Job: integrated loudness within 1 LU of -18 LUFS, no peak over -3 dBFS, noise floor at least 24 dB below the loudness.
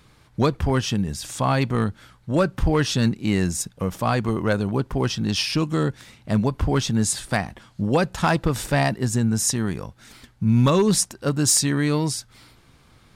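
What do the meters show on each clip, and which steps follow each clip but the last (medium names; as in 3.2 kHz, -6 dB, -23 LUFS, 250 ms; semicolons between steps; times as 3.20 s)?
clipped samples 0.4%; clipping level -11.0 dBFS; loudness -22.5 LUFS; peak level -11.0 dBFS; loudness target -18.0 LUFS
-> clip repair -11 dBFS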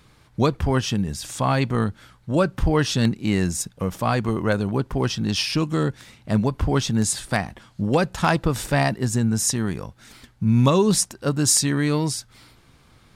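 clipped samples 0.0%; loudness -22.5 LUFS; peak level -2.5 dBFS; loudness target -18.0 LUFS
-> trim +4.5 dB; peak limiter -3 dBFS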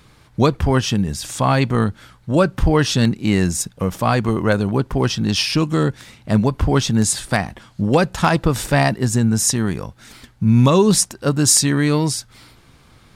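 loudness -18.0 LUFS; peak level -3.0 dBFS; noise floor -51 dBFS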